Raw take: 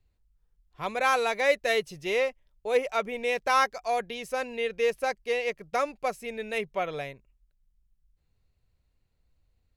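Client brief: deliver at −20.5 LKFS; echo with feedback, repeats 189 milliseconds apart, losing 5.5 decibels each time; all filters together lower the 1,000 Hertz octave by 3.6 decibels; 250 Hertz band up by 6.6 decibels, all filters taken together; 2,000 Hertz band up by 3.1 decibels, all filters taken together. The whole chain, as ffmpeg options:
ffmpeg -i in.wav -af "equalizer=frequency=250:width_type=o:gain=8,equalizer=frequency=1000:width_type=o:gain=-7.5,equalizer=frequency=2000:width_type=o:gain=5.5,aecho=1:1:189|378|567|756|945|1134|1323:0.531|0.281|0.149|0.079|0.0419|0.0222|0.0118,volume=5.5dB" out.wav

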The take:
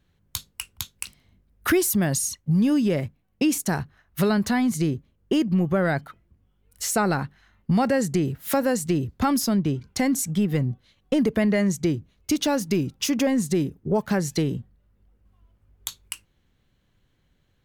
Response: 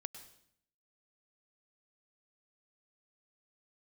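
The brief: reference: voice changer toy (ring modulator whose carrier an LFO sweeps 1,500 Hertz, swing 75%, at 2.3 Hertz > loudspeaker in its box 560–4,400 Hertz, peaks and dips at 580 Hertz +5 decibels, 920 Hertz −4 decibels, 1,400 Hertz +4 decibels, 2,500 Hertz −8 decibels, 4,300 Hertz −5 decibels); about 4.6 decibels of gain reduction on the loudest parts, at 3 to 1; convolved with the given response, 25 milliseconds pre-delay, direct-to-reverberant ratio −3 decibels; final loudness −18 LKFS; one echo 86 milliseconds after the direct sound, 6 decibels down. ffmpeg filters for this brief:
-filter_complex "[0:a]acompressor=threshold=-23dB:ratio=3,aecho=1:1:86:0.501,asplit=2[link_01][link_02];[1:a]atrim=start_sample=2205,adelay=25[link_03];[link_02][link_03]afir=irnorm=-1:irlink=0,volume=6.5dB[link_04];[link_01][link_04]amix=inputs=2:normalize=0,aeval=exprs='val(0)*sin(2*PI*1500*n/s+1500*0.75/2.3*sin(2*PI*2.3*n/s))':channel_layout=same,highpass=560,equalizer=frequency=580:width_type=q:width=4:gain=5,equalizer=frequency=920:width_type=q:width=4:gain=-4,equalizer=frequency=1400:width_type=q:width=4:gain=4,equalizer=frequency=2500:width_type=q:width=4:gain=-8,equalizer=frequency=4300:width_type=q:width=4:gain=-5,lowpass=frequency=4400:width=0.5412,lowpass=frequency=4400:width=1.3066,volume=7dB"

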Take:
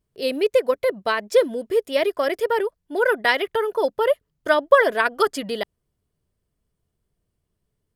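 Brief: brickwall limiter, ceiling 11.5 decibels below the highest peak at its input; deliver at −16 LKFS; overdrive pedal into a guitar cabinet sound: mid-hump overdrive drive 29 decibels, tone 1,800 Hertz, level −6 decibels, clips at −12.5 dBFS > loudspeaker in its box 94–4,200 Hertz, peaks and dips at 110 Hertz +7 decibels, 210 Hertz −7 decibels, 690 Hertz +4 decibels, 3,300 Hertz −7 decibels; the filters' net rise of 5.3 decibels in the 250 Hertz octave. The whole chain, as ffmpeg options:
ffmpeg -i in.wav -filter_complex "[0:a]equalizer=frequency=250:width_type=o:gain=8.5,alimiter=limit=-12.5dB:level=0:latency=1,asplit=2[link_01][link_02];[link_02]highpass=frequency=720:poles=1,volume=29dB,asoftclip=type=tanh:threshold=-12.5dB[link_03];[link_01][link_03]amix=inputs=2:normalize=0,lowpass=frequency=1800:poles=1,volume=-6dB,highpass=94,equalizer=frequency=110:width_type=q:width=4:gain=7,equalizer=frequency=210:width_type=q:width=4:gain=-7,equalizer=frequency=690:width_type=q:width=4:gain=4,equalizer=frequency=3300:width_type=q:width=4:gain=-7,lowpass=frequency=4200:width=0.5412,lowpass=frequency=4200:width=1.3066,volume=4dB" out.wav

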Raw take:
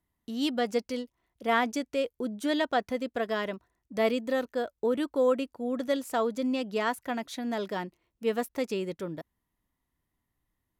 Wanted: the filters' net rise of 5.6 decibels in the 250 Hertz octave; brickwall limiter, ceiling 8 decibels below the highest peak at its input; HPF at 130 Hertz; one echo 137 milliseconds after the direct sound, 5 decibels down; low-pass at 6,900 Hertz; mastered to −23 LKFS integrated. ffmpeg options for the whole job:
ffmpeg -i in.wav -af "highpass=130,lowpass=6900,equalizer=frequency=250:width_type=o:gain=6.5,alimiter=limit=-19dB:level=0:latency=1,aecho=1:1:137:0.562,volume=6dB" out.wav

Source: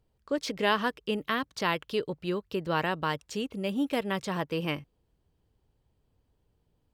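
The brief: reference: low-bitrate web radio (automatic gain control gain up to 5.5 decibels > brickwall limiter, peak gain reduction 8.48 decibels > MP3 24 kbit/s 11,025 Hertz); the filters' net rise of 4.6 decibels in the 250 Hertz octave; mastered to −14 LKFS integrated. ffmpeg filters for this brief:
ffmpeg -i in.wav -af "equalizer=frequency=250:width_type=o:gain=6,dynaudnorm=maxgain=5.5dB,alimiter=limit=-21dB:level=0:latency=1,volume=18.5dB" -ar 11025 -c:a libmp3lame -b:a 24k out.mp3

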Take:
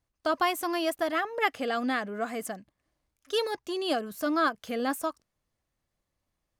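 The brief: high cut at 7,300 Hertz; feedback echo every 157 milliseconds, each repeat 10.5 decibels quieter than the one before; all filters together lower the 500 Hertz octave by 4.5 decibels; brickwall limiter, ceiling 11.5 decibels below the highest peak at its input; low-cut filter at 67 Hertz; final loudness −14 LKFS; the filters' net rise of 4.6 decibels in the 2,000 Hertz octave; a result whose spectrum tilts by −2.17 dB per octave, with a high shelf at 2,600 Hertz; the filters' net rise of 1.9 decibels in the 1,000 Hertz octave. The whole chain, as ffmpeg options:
ffmpeg -i in.wav -af "highpass=67,lowpass=7300,equalizer=frequency=500:width_type=o:gain=-8,equalizer=frequency=1000:width_type=o:gain=3,equalizer=frequency=2000:width_type=o:gain=3.5,highshelf=frequency=2600:gain=4.5,alimiter=limit=-20dB:level=0:latency=1,aecho=1:1:157|314|471:0.299|0.0896|0.0269,volume=17.5dB" out.wav

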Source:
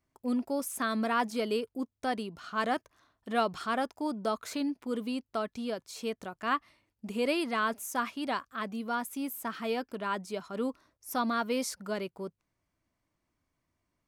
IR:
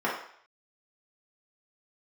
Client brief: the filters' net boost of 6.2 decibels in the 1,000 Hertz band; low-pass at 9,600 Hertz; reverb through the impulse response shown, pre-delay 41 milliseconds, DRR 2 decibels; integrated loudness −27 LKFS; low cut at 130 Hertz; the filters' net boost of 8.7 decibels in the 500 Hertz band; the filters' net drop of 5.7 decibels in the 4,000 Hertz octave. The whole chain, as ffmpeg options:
-filter_complex "[0:a]highpass=130,lowpass=9600,equalizer=frequency=500:width_type=o:gain=9,equalizer=frequency=1000:width_type=o:gain=5.5,equalizer=frequency=4000:width_type=o:gain=-8.5,asplit=2[link_01][link_02];[1:a]atrim=start_sample=2205,adelay=41[link_03];[link_02][link_03]afir=irnorm=-1:irlink=0,volume=-14.5dB[link_04];[link_01][link_04]amix=inputs=2:normalize=0,volume=-2dB"

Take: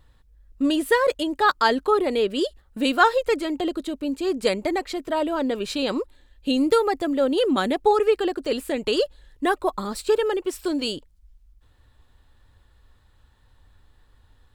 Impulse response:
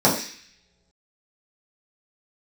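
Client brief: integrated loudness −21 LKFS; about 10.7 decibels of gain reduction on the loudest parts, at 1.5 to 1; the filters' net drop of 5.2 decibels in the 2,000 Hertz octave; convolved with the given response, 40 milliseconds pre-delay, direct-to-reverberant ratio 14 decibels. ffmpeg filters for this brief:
-filter_complex "[0:a]equalizer=frequency=2000:width_type=o:gain=-7.5,acompressor=threshold=-45dB:ratio=1.5,asplit=2[link_01][link_02];[1:a]atrim=start_sample=2205,adelay=40[link_03];[link_02][link_03]afir=irnorm=-1:irlink=0,volume=-34dB[link_04];[link_01][link_04]amix=inputs=2:normalize=0,volume=11.5dB"

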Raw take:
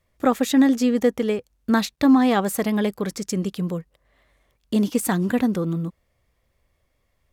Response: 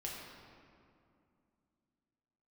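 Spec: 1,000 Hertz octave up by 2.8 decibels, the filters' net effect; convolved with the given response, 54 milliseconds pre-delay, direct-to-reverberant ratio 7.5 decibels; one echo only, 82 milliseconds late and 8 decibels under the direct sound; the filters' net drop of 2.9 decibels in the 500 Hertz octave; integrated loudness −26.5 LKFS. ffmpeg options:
-filter_complex "[0:a]equalizer=frequency=500:width_type=o:gain=-4.5,equalizer=frequency=1000:width_type=o:gain=5.5,aecho=1:1:82:0.398,asplit=2[link_01][link_02];[1:a]atrim=start_sample=2205,adelay=54[link_03];[link_02][link_03]afir=irnorm=-1:irlink=0,volume=-7.5dB[link_04];[link_01][link_04]amix=inputs=2:normalize=0,volume=-5.5dB"

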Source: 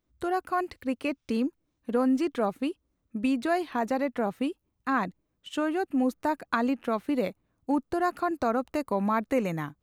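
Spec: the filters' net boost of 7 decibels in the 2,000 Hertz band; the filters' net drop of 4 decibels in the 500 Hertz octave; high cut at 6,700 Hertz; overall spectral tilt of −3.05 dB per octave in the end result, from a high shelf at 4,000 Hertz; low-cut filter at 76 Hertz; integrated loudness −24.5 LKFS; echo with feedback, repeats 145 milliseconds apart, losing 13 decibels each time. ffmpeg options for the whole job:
ffmpeg -i in.wav -af "highpass=76,lowpass=6700,equalizer=frequency=500:width_type=o:gain=-6,equalizer=frequency=2000:width_type=o:gain=8.5,highshelf=frequency=4000:gain=6.5,aecho=1:1:145|290|435:0.224|0.0493|0.0108,volume=4.5dB" out.wav

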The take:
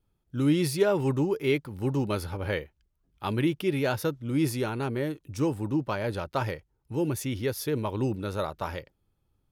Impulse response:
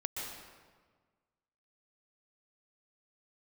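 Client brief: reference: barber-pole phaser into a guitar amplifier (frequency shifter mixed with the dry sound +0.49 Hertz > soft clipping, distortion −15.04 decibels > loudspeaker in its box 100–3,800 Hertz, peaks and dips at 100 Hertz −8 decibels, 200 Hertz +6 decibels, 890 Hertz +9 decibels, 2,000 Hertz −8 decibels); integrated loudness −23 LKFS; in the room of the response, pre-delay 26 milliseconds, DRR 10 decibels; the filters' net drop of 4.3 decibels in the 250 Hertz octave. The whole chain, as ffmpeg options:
-filter_complex "[0:a]equalizer=frequency=250:width_type=o:gain=-7.5,asplit=2[link_01][link_02];[1:a]atrim=start_sample=2205,adelay=26[link_03];[link_02][link_03]afir=irnorm=-1:irlink=0,volume=-12dB[link_04];[link_01][link_04]amix=inputs=2:normalize=0,asplit=2[link_05][link_06];[link_06]afreqshift=0.49[link_07];[link_05][link_07]amix=inputs=2:normalize=1,asoftclip=threshold=-27dB,highpass=100,equalizer=frequency=100:width_type=q:width=4:gain=-8,equalizer=frequency=200:width_type=q:width=4:gain=6,equalizer=frequency=890:width_type=q:width=4:gain=9,equalizer=frequency=2000:width_type=q:width=4:gain=-8,lowpass=frequency=3800:width=0.5412,lowpass=frequency=3800:width=1.3066,volume=13dB"

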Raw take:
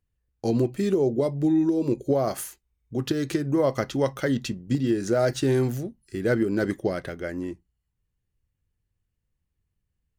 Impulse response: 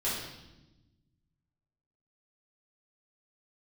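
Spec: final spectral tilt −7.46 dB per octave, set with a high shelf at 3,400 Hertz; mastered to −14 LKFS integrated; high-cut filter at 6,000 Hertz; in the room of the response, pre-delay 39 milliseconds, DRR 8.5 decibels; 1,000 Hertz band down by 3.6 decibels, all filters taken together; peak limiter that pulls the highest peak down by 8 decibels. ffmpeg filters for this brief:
-filter_complex "[0:a]lowpass=6000,equalizer=frequency=1000:width_type=o:gain=-4.5,highshelf=frequency=3400:gain=-9,alimiter=limit=-20dB:level=0:latency=1,asplit=2[link_01][link_02];[1:a]atrim=start_sample=2205,adelay=39[link_03];[link_02][link_03]afir=irnorm=-1:irlink=0,volume=-15.5dB[link_04];[link_01][link_04]amix=inputs=2:normalize=0,volume=14.5dB"

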